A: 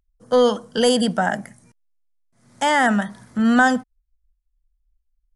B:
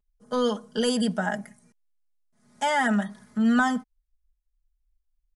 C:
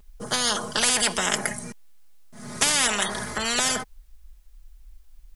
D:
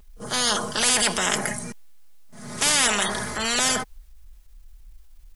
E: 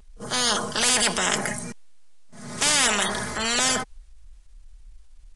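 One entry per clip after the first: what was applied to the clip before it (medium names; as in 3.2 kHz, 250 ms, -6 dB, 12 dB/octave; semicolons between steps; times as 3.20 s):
comb 4.8 ms, depth 77%; trim -8.5 dB
spectrum-flattening compressor 10:1; trim +8 dB
transient shaper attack -5 dB, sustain +2 dB; reverse echo 35 ms -18 dB; trim +2 dB
resampled via 22.05 kHz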